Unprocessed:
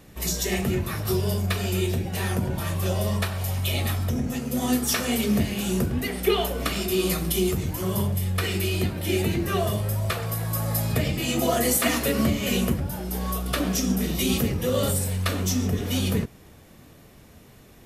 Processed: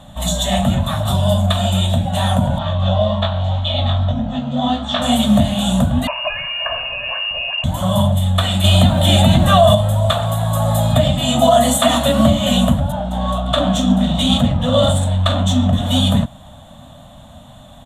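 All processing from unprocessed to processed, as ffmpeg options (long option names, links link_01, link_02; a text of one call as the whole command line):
ffmpeg -i in.wav -filter_complex "[0:a]asettb=1/sr,asplit=3[link_01][link_02][link_03];[link_01]atrim=end=2.584[link_04];[link_02]atrim=start=2.58:end=5.02,asetpts=PTS-STARTPTS,afade=type=in:duration=0.004:curve=qsin,afade=type=out:start_time=2.436:duration=0.004:curve=qsin,lowpass=frequency=4600:width=0.5412,lowpass=frequency=4600:width=1.3066,flanger=delay=18:depth=3.6:speed=1.8[link_05];[link_03]atrim=start=5.016[link_06];[link_04][link_05]acrossfade=duration=0.004:curve1=hsin:curve2=qsin[link_07];[link_07][link_06]acrossfade=duration=0.004:curve1=qsin:curve2=hsin,asettb=1/sr,asplit=3[link_08][link_09][link_10];[link_08]atrim=end=6.074[link_11];[link_09]atrim=start=6.07:end=7.64,asetpts=PTS-STARTPTS,afade=type=in:duration=0.004:curve=qsin,afade=type=out:start_time=1.566:duration=0.004:curve=qsin,aecho=1:1:1.7:0.61,atrim=end_sample=69237,acompressor=threshold=-25dB:ratio=2.5:attack=3.2:release=140:knee=1:detection=peak,lowpass=frequency=2500:width_type=q:width=0.5098,lowpass=frequency=2500:width_type=q:width=0.6013,lowpass=frequency=2500:width_type=q:width=0.9,lowpass=frequency=2500:width_type=q:width=2.563,afreqshift=-2900[link_12];[link_10]atrim=start=7.636[link_13];[link_11][link_12]acrossfade=duration=0.004:curve1=hsin:curve2=qsin[link_14];[link_14][link_13]acrossfade=duration=0.004:curve1=qsin:curve2=hsin,asettb=1/sr,asplit=3[link_15][link_16][link_17];[link_15]atrim=end=8.644[link_18];[link_16]atrim=start=8.64:end=9.75,asetpts=PTS-STARTPTS,afade=type=in:duration=0.004:curve=qsin,afade=type=out:start_time=1.106:duration=0.004:curve=qsin,acontrast=54,acrusher=bits=8:dc=4:mix=0:aa=0.000001[link_19];[link_17]atrim=start=9.746[link_20];[link_18][link_19]acrossfade=duration=0.004:curve1=hsin:curve2=qsin[link_21];[link_21][link_20]acrossfade=duration=0.004:curve1=qsin:curve2=hsin,asettb=1/sr,asplit=3[link_22][link_23][link_24];[link_22]atrim=end=12.924[link_25];[link_23]atrim=start=12.92:end=15.73,asetpts=PTS-STARTPTS,afade=type=in:duration=0.004:curve=qsin,afade=type=out:start_time=2.806:duration=0.004:curve=qsin,adynamicsmooth=sensitivity=7:basefreq=3100,asplit=2[link_26][link_27];[link_27]adelay=41,volume=-12.5dB[link_28];[link_26][link_28]amix=inputs=2:normalize=0,atrim=end_sample=123921[link_29];[link_24]atrim=start=15.726[link_30];[link_25][link_29]acrossfade=duration=0.004:curve1=hsin:curve2=qsin[link_31];[link_31][link_30]acrossfade=duration=0.004:curve1=qsin:curve2=hsin,firequalizer=gain_entry='entry(260,0);entry(390,-30);entry(590,8);entry(2300,-13);entry(3500,9);entry(5000,-22);entry(7200,-1);entry(13000,-15)':delay=0.05:min_phase=1,alimiter=level_in=11dB:limit=-1dB:release=50:level=0:latency=1,volume=-1dB" out.wav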